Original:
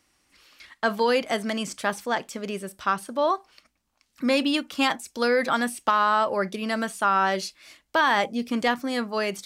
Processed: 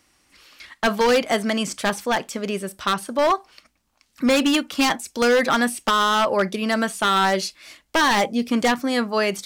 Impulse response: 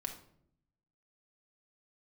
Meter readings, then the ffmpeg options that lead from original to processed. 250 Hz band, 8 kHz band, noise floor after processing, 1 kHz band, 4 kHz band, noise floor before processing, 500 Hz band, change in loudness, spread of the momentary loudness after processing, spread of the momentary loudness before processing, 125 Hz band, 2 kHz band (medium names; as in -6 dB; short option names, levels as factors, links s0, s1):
+5.5 dB, +8.0 dB, -68 dBFS, +2.5 dB, +6.0 dB, -73 dBFS, +4.5 dB, +4.0 dB, 7 LU, 8 LU, +6.0 dB, +3.5 dB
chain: -af "aeval=exprs='0.141*(abs(mod(val(0)/0.141+3,4)-2)-1)':c=same,volume=1.88"